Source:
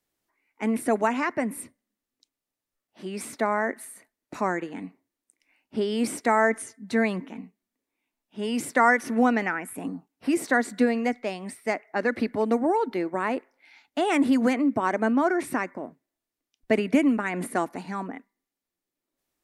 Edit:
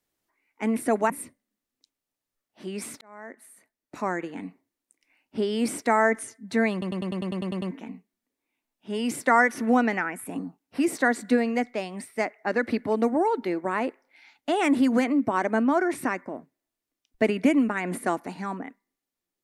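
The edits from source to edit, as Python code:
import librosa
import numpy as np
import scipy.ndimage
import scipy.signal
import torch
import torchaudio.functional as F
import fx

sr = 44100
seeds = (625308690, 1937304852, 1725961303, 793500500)

y = fx.edit(x, sr, fx.cut(start_s=1.1, length_s=0.39),
    fx.fade_in_span(start_s=3.4, length_s=1.36),
    fx.stutter(start_s=7.11, slice_s=0.1, count=10), tone=tone)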